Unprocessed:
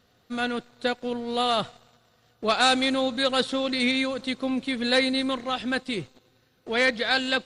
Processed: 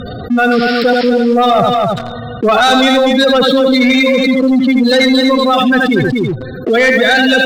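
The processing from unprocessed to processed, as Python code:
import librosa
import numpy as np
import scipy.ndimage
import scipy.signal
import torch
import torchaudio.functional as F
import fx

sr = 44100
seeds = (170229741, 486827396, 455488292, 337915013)

y = fx.spec_gate(x, sr, threshold_db=-10, keep='strong')
y = scipy.signal.sosfilt(scipy.signal.butter(2, 8700.0, 'lowpass', fs=sr, output='sos'), y)
y = y + 10.0 ** (-7.0 / 20.0) * np.pad(y, (int(81 * sr / 1000.0), 0))[:len(y)]
y = fx.leveller(y, sr, passes=2)
y = fx.spec_paint(y, sr, seeds[0], shape='noise', start_s=0.51, length_s=0.59, low_hz=1200.0, high_hz=5500.0, level_db=-40.0)
y = y + 10.0 ** (-9.0 / 20.0) * np.pad(y, (int(241 * sr / 1000.0), 0))[:len(y)]
y = fx.env_flatten(y, sr, amount_pct=70)
y = F.gain(torch.from_numpy(y), 7.0).numpy()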